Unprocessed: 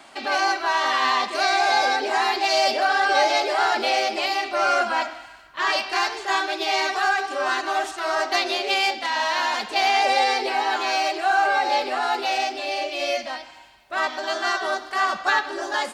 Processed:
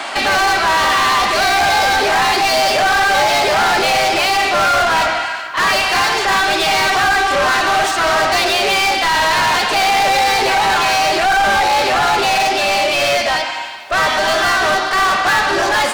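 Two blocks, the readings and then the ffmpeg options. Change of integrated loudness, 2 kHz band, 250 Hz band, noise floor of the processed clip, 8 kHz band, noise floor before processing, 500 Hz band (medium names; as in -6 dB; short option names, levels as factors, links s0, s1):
+8.5 dB, +9.0 dB, +9.0 dB, -22 dBFS, +12.5 dB, -44 dBFS, +8.0 dB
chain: -filter_complex "[0:a]asplit=2[s0][s1];[s1]highpass=f=720:p=1,volume=39.8,asoftclip=type=tanh:threshold=0.422[s2];[s0][s2]amix=inputs=2:normalize=0,lowpass=f=4100:p=1,volume=0.501"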